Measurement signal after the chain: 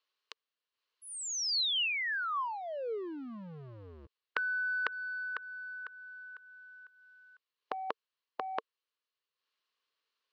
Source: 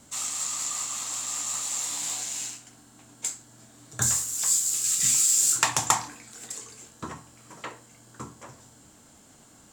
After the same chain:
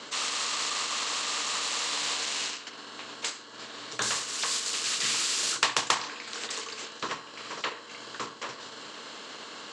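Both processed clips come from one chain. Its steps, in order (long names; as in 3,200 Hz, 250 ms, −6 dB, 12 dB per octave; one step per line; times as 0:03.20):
transient designer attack −2 dB, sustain −7 dB
loudspeaker in its box 420–5,200 Hz, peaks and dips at 450 Hz +9 dB, 760 Hz −8 dB, 1,100 Hz +10 dB, 1,700 Hz +4 dB, 2,900 Hz +8 dB, 4,200 Hz +7 dB
every bin compressed towards the loudest bin 2 to 1
level −2.5 dB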